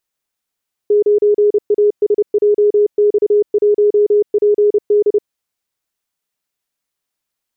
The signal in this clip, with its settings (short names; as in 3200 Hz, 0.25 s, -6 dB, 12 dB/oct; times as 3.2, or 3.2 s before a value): Morse "9ASJX1PD" 30 wpm 415 Hz -8 dBFS